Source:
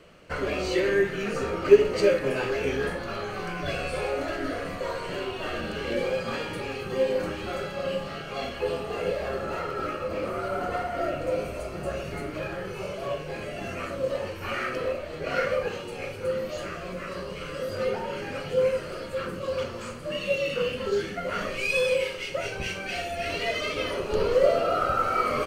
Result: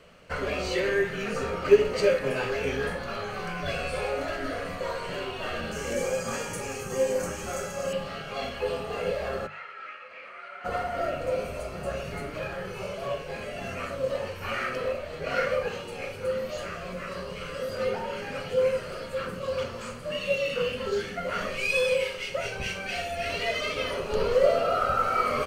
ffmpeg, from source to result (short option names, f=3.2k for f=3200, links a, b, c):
-filter_complex "[0:a]asettb=1/sr,asplit=3[a][b][c];[a]atrim=end=5.724[d];[b]atrim=start=5.72:end=7.93,asetpts=PTS-STARTPTS,afade=t=in:d=0.004:c=qsin,afade=t=out:st=2.206:d=0.004:c=qsin,highshelf=f=5.1k:t=q:w=3:g=9[e];[c]atrim=start=7.926[f];[d][e]acrossfade=d=0.004:c1=hsin:c2=qsin[g];[g][f]acrossfade=d=0.004:c1=qsin:c2=hsin,asplit=3[h][i][j];[h]afade=t=out:st=9.46:d=0.02[k];[i]bandpass=f=2.1k:t=q:w=2.5,afade=t=in:st=9.46:d=0.02,afade=t=out:st=10.64:d=0.02[l];[j]afade=t=in:st=10.64:d=0.02[m];[k][l][m]amix=inputs=3:normalize=0,equalizer=f=330:w=4.9:g=-11,bandreject=f=50:t=h:w=6,bandreject=f=100:t=h:w=6,bandreject=f=150:t=h:w=6,bandreject=f=200:t=h:w=6"